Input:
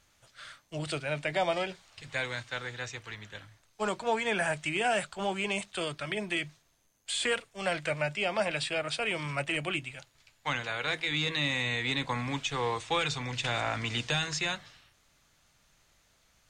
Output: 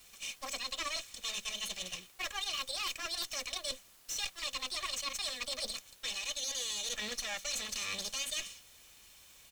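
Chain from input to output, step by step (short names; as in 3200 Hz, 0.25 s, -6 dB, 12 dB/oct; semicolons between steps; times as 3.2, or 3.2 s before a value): minimum comb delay 2.9 ms; band shelf 2500 Hz +10 dB 2.3 oct; notch 2800 Hz, Q 12; comb 6.2 ms, depth 34%; reverse; compressor 5:1, threshold -37 dBFS, peak gain reduction 16 dB; reverse; requantised 10-bit, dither triangular; speed mistake 45 rpm record played at 78 rpm; gain +1 dB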